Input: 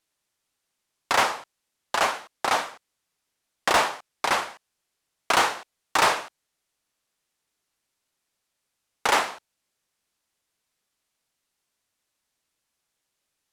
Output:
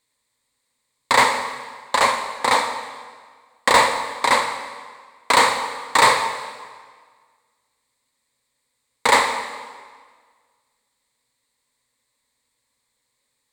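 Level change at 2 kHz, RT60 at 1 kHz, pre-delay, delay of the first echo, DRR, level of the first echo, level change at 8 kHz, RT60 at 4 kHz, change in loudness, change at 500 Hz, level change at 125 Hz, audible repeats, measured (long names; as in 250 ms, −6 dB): +6.0 dB, 1.7 s, 36 ms, no echo audible, 7.0 dB, no echo audible, +6.0 dB, 1.4 s, +5.5 dB, +6.0 dB, +6.0 dB, no echo audible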